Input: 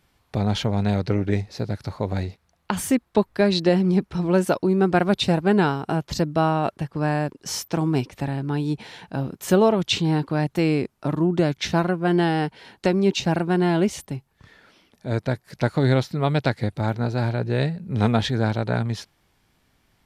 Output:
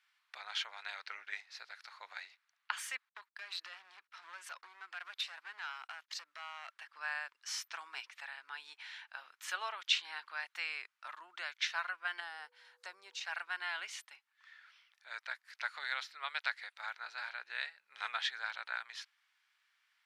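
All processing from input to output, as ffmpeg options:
-filter_complex "[0:a]asettb=1/sr,asplit=3[s0][s1][s2];[s0]atrim=end=3.094[s3];[s1]atrim=start=3.09:end=6.72,asetpts=PTS-STARTPTS,afade=t=in:d=0.004:c=qsin,afade=t=out:st=3.626:d=0.004:c=qsin,agate=range=0.02:threshold=0.01:ratio=16:release=100:detection=peak,acompressor=threshold=0.0794:ratio=16:attack=3.2:release=140:knee=1:detection=peak,asoftclip=type=hard:threshold=0.0631[s4];[s2]atrim=start=6.716[s5];[s3][s4]acrossfade=d=0.004:c1=hsin:c2=qsin[s6];[s6][s5]acrossfade=d=0.004:c1=qsin:c2=hsin,asettb=1/sr,asplit=3[s7][s8][s9];[s7]atrim=end=12.204[s10];[s8]atrim=start=12.2:end=13.21,asetpts=PTS-STARTPTS,afade=t=in:d=0.004:c=qsin,afade=t=out:st=1.006:d=0.004:c=qsin,acompressor=mode=upward:threshold=0.0141:ratio=2.5:attack=3.2:release=140:knee=2.83:detection=peak,aeval=exprs='val(0)+0.0158*sin(2*PI*490*n/s)':c=same,equalizer=f=2500:t=o:w=1.9:g=-13.5[s11];[s9]atrim=start=13.206[s12];[s10][s11]acrossfade=d=0.004:c1=hsin:c2=qsin[s13];[s13][s12]acrossfade=d=0.004:c1=qsin:c2=hsin,highpass=f=1400:w=0.5412,highpass=f=1400:w=1.3066,aemphasis=mode=reproduction:type=75fm,volume=0.75"

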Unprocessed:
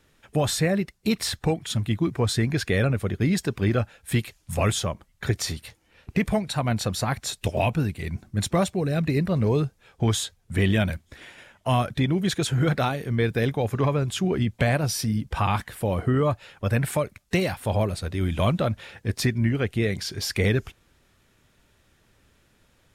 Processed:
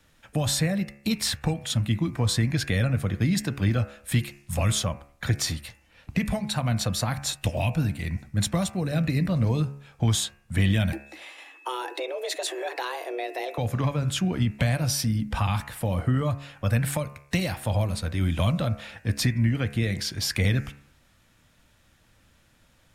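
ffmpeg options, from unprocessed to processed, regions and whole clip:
-filter_complex "[0:a]asettb=1/sr,asplit=3[s0][s1][s2];[s0]atrim=end=10.924[s3];[s1]atrim=start=10.92:end=13.58,asetpts=PTS-STARTPTS,afade=t=in:d=0.004:c=qsin,afade=t=out:st=2.656:d=0.004:c=qsin,acompressor=threshold=0.0562:ratio=3:attack=3.2:release=140:knee=1:detection=peak,afreqshift=250,aeval=exprs='val(0)+0.00282*sin(2*PI*2600*n/s)':c=same[s4];[s2]atrim=start=13.576[s5];[s3][s4]acrossfade=d=0.004:c1=hsin:c2=qsin[s6];[s6][s5]acrossfade=d=0.004:c1=qsin:c2=hsin,equalizer=f=400:t=o:w=0.24:g=-13,bandreject=f=70.42:t=h:w=4,bandreject=f=140.84:t=h:w=4,bandreject=f=211.26:t=h:w=4,bandreject=f=281.68:t=h:w=4,bandreject=f=352.1:t=h:w=4,bandreject=f=422.52:t=h:w=4,bandreject=f=492.94:t=h:w=4,bandreject=f=563.36:t=h:w=4,bandreject=f=633.78:t=h:w=4,bandreject=f=704.2:t=h:w=4,bandreject=f=774.62:t=h:w=4,bandreject=f=845.04:t=h:w=4,bandreject=f=915.46:t=h:w=4,bandreject=f=985.88:t=h:w=4,bandreject=f=1056.3:t=h:w=4,bandreject=f=1126.72:t=h:w=4,bandreject=f=1197.14:t=h:w=4,bandreject=f=1267.56:t=h:w=4,bandreject=f=1337.98:t=h:w=4,bandreject=f=1408.4:t=h:w=4,bandreject=f=1478.82:t=h:w=4,bandreject=f=1549.24:t=h:w=4,bandreject=f=1619.66:t=h:w=4,bandreject=f=1690.08:t=h:w=4,bandreject=f=1760.5:t=h:w=4,bandreject=f=1830.92:t=h:w=4,bandreject=f=1901.34:t=h:w=4,bandreject=f=1971.76:t=h:w=4,bandreject=f=2042.18:t=h:w=4,bandreject=f=2112.6:t=h:w=4,bandreject=f=2183.02:t=h:w=4,bandreject=f=2253.44:t=h:w=4,bandreject=f=2323.86:t=h:w=4,bandreject=f=2394.28:t=h:w=4,bandreject=f=2464.7:t=h:w=4,bandreject=f=2535.12:t=h:w=4,bandreject=f=2605.54:t=h:w=4,bandreject=f=2675.96:t=h:w=4,bandreject=f=2746.38:t=h:w=4,bandreject=f=2816.8:t=h:w=4,acrossover=split=190|3000[s7][s8][s9];[s8]acompressor=threshold=0.0355:ratio=6[s10];[s7][s10][s9]amix=inputs=3:normalize=0,volume=1.19"

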